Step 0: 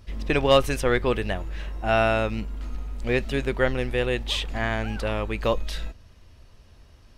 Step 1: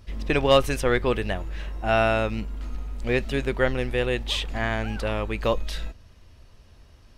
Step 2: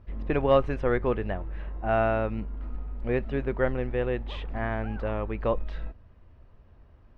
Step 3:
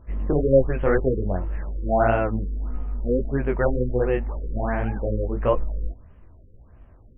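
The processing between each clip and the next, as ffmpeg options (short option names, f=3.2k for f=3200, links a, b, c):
-af anull
-af "lowpass=1.5k,volume=-2.5dB"
-af "flanger=delay=15:depth=7:speed=1.8,afftfilt=real='re*lt(b*sr/1024,530*pow(3400/530,0.5+0.5*sin(2*PI*1.5*pts/sr)))':imag='im*lt(b*sr/1024,530*pow(3400/530,0.5+0.5*sin(2*PI*1.5*pts/sr)))':win_size=1024:overlap=0.75,volume=8dB"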